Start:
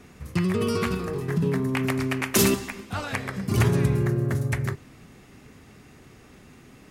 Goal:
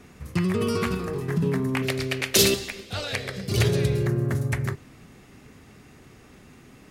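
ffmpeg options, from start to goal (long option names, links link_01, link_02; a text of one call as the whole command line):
ffmpeg -i in.wav -filter_complex "[0:a]asettb=1/sr,asplit=3[link_01][link_02][link_03];[link_01]atrim=end=1.824[link_04];[link_02]atrim=start=1.82:end=4.07,asetpts=PTS-STARTPTS,afade=type=in:duration=0.004:curve=qsin,afade=type=out:start_time=2.246:duration=0.004:curve=qsin,equalizer=frequency=250:width_type=o:width=1:gain=-8,equalizer=frequency=500:width_type=o:width=1:gain=8,equalizer=frequency=1000:width_type=o:width=1:gain=-10,equalizer=frequency=4000:width_type=o:width=1:gain=10[link_05];[link_03]atrim=start=4.066[link_06];[link_04][link_05]acrossfade=duration=0.004:curve1=hsin:curve2=qsin[link_07];[link_07][link_06]acrossfade=duration=0.004:curve1=qsin:curve2=hsin" out.wav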